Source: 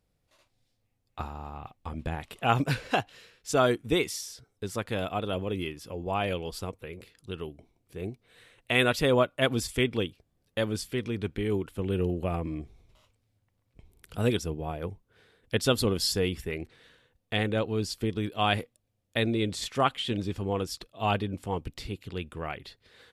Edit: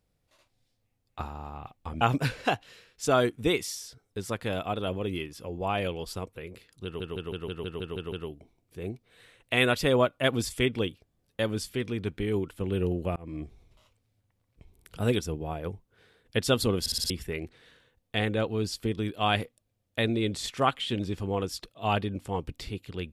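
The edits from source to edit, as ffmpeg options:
-filter_complex "[0:a]asplit=16[s0][s1][s2][s3][s4][s5][s6][s7][s8][s9][s10][s11][s12][s13][s14][s15];[s0]atrim=end=2.012[s16];[s1]atrim=start=2.468:end=7.462[s17];[s2]atrim=start=7.298:end=7.462[s18];[s3]atrim=start=7.298:end=7.462[s19];[s4]atrim=start=7.298:end=7.462[s20];[s5]atrim=start=7.298:end=7.462[s21];[s6]atrim=start=7.298:end=7.462[s22];[s7]atrim=start=7.298:end=7.462[s23];[s8]atrim=start=7.298:end=7.462[s24];[s9]atrim=start=7.298:end=12.34,asetpts=PTS-STARTPTS,afade=t=out:st=5.038:d=0.004:c=hsin[s25];[s10]atrim=start=12.34:end=16.042,asetpts=PTS-STARTPTS,afade=t=in:d=0.25[s26];[s11]atrim=start=15.978:end=16.042[s27];[s12]atrim=start=15.978:end=16.042[s28];[s13]atrim=start=15.978:end=16.042[s29];[s14]atrim=start=15.978:end=16.042[s30];[s15]atrim=start=16.278[s31];[s16][s17]acrossfade=d=0.004:c1=hsin:c2=hsin[s32];[s32][s18]acrossfade=d=0.004:c1=hsin:c2=hsin[s33];[s33][s19]acrossfade=d=0.004:c1=hsin:c2=hsin[s34];[s34][s20]acrossfade=d=0.004:c1=hsin:c2=hsin[s35];[s35][s21]acrossfade=d=0.004:c1=hsin:c2=hsin[s36];[s36][s22]acrossfade=d=0.004:c1=hsin:c2=hsin[s37];[s37][s23]acrossfade=d=0.004:c1=hsin:c2=hsin[s38];[s38][s24]acrossfade=d=0.004:c1=hsin:c2=hsin[s39];[s25][s26]concat=n=2:v=0:a=1[s40];[s39][s40]acrossfade=d=0.004:c1=hsin:c2=hsin[s41];[s41][s27]acrossfade=d=0.004:c1=hsin:c2=hsin[s42];[s42][s28]acrossfade=d=0.004:c1=hsin:c2=hsin[s43];[s43][s29]acrossfade=d=0.004:c1=hsin:c2=hsin[s44];[s44][s30]acrossfade=d=0.004:c1=hsin:c2=hsin[s45];[s45][s31]acrossfade=d=0.004:c1=hsin:c2=hsin"

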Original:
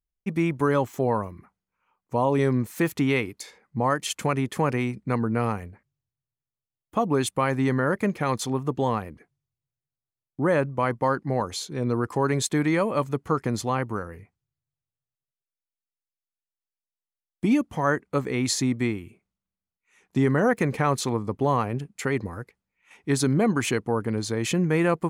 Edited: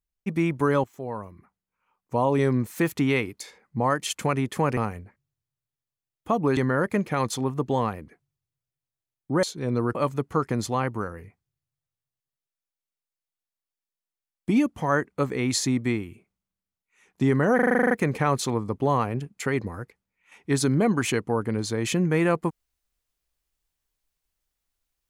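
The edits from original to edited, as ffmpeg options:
-filter_complex "[0:a]asplit=15[s0][s1][s2][s3][s4][s5][s6][s7][s8][s9][s10][s11][s12][s13][s14];[s0]atrim=end=0.84,asetpts=PTS-STARTPTS,afade=t=out:st=0.836:d=0.004:c=hsin:silence=0.188365[s15];[s1]atrim=start=0.84:end=4.772,asetpts=PTS-STARTPTS,afade=t=in:d=1.31:silence=0.188365[s16];[s2]atrim=start=5.438:end=7.242[s17];[s3]atrim=start=7.658:end=10.522[s18];[s4]atrim=start=11.568:end=12.092[s19];[s5]atrim=start=12.898:end=20.542[s20];[s6]atrim=start=20.498:end=20.542[s21];[s7]atrim=start=20.498:end=20.542[s22];[s8]atrim=start=20.498:end=20.542[s23];[s9]atrim=start=20.498:end=20.542[s24];[s10]atrim=start=20.498:end=20.542[s25];[s11]atrim=start=20.498:end=20.542[s26];[s12]atrim=start=20.498:end=20.542[s27];[s13]atrim=start=20.498:end=20.542[s28];[s14]atrim=start=20.498[s29];[s15][s16]concat=n=2:v=0:a=1[s30];[s30][s17]acrossfade=d=0.004:c1=hsin:c2=hsin[s31];[s31][s18]acrossfade=d=0.004:c1=hsin:c2=hsin[s32];[s32][s19]acrossfade=d=0.004:c1=hsin:c2=hsin[s33];[s33][s20]acrossfade=d=0.004:c1=hsin:c2=hsin[s34];[s34][s21]acrossfade=d=0.004:c1=hsin:c2=hsin[s35];[s35][s22]acrossfade=d=0.004:c1=hsin:c2=hsin[s36];[s36][s23]acrossfade=d=0.004:c1=hsin:c2=hsin[s37];[s37][s24]acrossfade=d=0.004:c1=hsin:c2=hsin[s38];[s38][s25]acrossfade=d=0.004:c1=hsin:c2=hsin[s39];[s39][s26]acrossfade=d=0.004:c1=hsin:c2=hsin[s40];[s40][s27]acrossfade=d=0.004:c1=hsin:c2=hsin[s41];[s41][s28]acrossfade=d=0.004:c1=hsin:c2=hsin[s42];[s42][s29]acrossfade=d=0.004:c1=hsin:c2=hsin"

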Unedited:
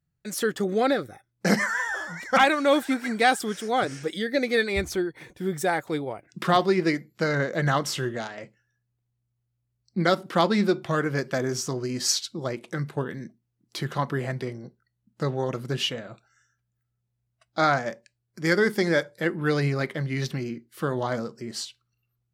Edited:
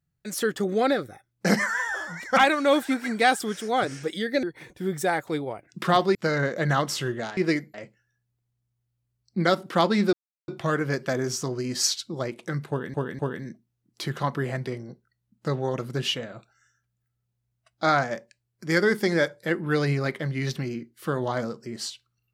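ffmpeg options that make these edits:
-filter_complex "[0:a]asplit=8[s0][s1][s2][s3][s4][s5][s6][s7];[s0]atrim=end=4.432[s8];[s1]atrim=start=5.028:end=6.752[s9];[s2]atrim=start=7.118:end=8.342[s10];[s3]atrim=start=6.748:end=7.122[s11];[s4]atrim=start=8.338:end=10.73,asetpts=PTS-STARTPTS,afade=t=out:st=2.388:d=0.004:c=hsin,apad=pad_dur=0.35[s12];[s5]atrim=start=10.73:end=13.192,asetpts=PTS-STARTPTS,afade=t=in:d=0.004:c=hsin[s13];[s6]atrim=start=12.938:end=13.192[s14];[s7]atrim=start=12.938[s15];[s8][s9]acrossfade=d=0.004:c1=hsin:c2=hsin[s16];[s16][s10]acrossfade=d=0.004:c1=hsin:c2=hsin[s17];[s17][s11]acrossfade=d=0.004:c1=hsin:c2=hsin[s18];[s12][s13]concat=n=2:v=0:a=1[s19];[s18][s19]acrossfade=d=0.004:c1=hsin:c2=hsin[s20];[s20][s14]acrossfade=d=0.004:c1=hsin:c2=hsin[s21];[s21][s15]acrossfade=d=0.004:c1=hsin:c2=hsin"

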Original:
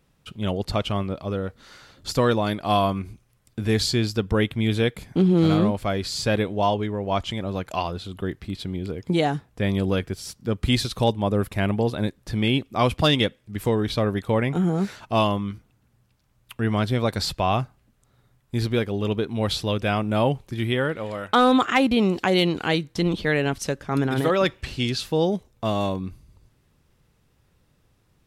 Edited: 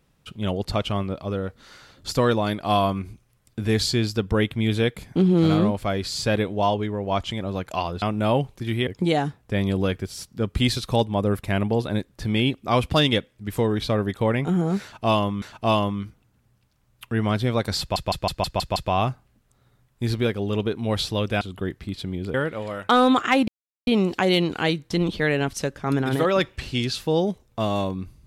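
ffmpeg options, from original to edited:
-filter_complex "[0:a]asplit=13[s0][s1][s2][s3][s4][s5][s6][s7][s8][s9][s10][s11][s12];[s0]atrim=end=8.022[s13];[s1]atrim=start=19.928:end=20.782[s14];[s2]atrim=start=8.948:end=15.502[s15];[s3]atrim=start=14.898:end=17.442[s16];[s4]atrim=start=17.278:end=17.442[s17];[s5]atrim=start=17.278:end=17.442[s18];[s6]atrim=start=17.278:end=17.442[s19];[s7]atrim=start=17.278:end=17.442[s20];[s8]atrim=start=17.278:end=17.442[s21];[s9]atrim=start=17.278:end=19.932[s22];[s10]atrim=start=8.018:end=8.952[s23];[s11]atrim=start=20.778:end=21.92,asetpts=PTS-STARTPTS,afade=t=out:st=1.138:d=0.004:c=hsin,apad=pad_dur=0.39[s24];[s12]atrim=start=21.92,asetpts=PTS-STARTPTS,afade=t=in:d=0.004:c=hsin[s25];[s13][s14]acrossfade=d=0.004:c1=hsin:c2=hsin[s26];[s26][s15]acrossfade=d=0.004:c1=hsin:c2=hsin[s27];[s27][s16]acrossfade=d=0.004:c1=hsin:c2=hsin[s28];[s28][s17]acrossfade=d=0.004:c1=hsin:c2=hsin[s29];[s29][s18]acrossfade=d=0.004:c1=hsin:c2=hsin[s30];[s30][s19]acrossfade=d=0.004:c1=hsin:c2=hsin[s31];[s31][s20]acrossfade=d=0.004:c1=hsin:c2=hsin[s32];[s32][s21]acrossfade=d=0.004:c1=hsin:c2=hsin[s33];[s33][s22]acrossfade=d=0.004:c1=hsin:c2=hsin[s34];[s34][s23]acrossfade=d=0.004:c1=hsin:c2=hsin[s35];[s24][s25]concat=n=2:v=0:a=1[s36];[s35][s36]acrossfade=d=0.004:c1=hsin:c2=hsin"

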